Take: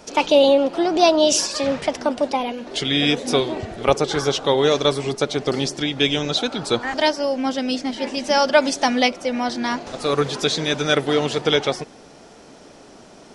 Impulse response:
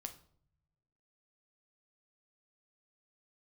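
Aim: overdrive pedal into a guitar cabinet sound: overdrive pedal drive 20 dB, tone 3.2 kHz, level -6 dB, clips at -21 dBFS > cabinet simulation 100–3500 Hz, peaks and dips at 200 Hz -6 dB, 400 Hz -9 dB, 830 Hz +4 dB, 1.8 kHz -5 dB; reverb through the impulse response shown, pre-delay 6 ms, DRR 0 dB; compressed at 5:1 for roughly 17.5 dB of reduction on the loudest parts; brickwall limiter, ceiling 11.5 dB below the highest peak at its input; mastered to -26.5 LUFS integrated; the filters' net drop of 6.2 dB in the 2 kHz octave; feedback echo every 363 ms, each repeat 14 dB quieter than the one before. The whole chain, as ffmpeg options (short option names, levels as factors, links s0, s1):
-filter_complex "[0:a]equalizer=f=2000:t=o:g=-6,acompressor=threshold=0.0282:ratio=5,alimiter=level_in=1.68:limit=0.0631:level=0:latency=1,volume=0.596,aecho=1:1:363|726:0.2|0.0399,asplit=2[s0][s1];[1:a]atrim=start_sample=2205,adelay=6[s2];[s1][s2]afir=irnorm=-1:irlink=0,volume=1.5[s3];[s0][s3]amix=inputs=2:normalize=0,asplit=2[s4][s5];[s5]highpass=f=720:p=1,volume=10,asoftclip=type=tanh:threshold=0.0891[s6];[s4][s6]amix=inputs=2:normalize=0,lowpass=f=3200:p=1,volume=0.501,highpass=100,equalizer=f=200:t=q:w=4:g=-6,equalizer=f=400:t=q:w=4:g=-9,equalizer=f=830:t=q:w=4:g=4,equalizer=f=1800:t=q:w=4:g=-5,lowpass=f=3500:w=0.5412,lowpass=f=3500:w=1.3066,volume=1.88"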